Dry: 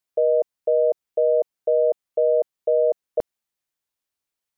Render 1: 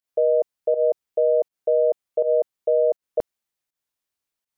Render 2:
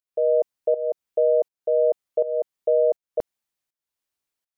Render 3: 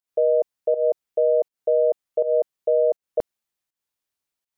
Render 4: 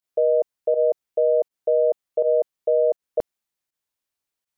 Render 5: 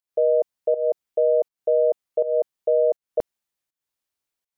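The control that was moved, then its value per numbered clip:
pump, release: 115, 451, 170, 71, 258 ms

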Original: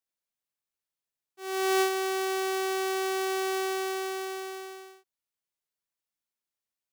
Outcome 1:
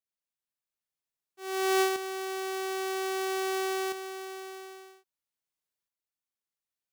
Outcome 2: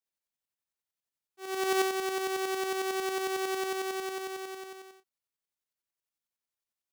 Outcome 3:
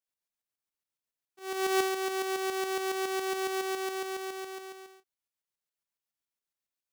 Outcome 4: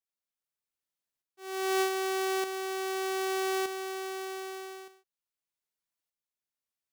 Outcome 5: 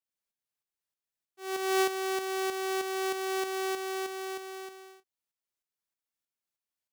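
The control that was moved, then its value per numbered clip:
tremolo, rate: 0.51, 11, 7.2, 0.82, 3.2 Hz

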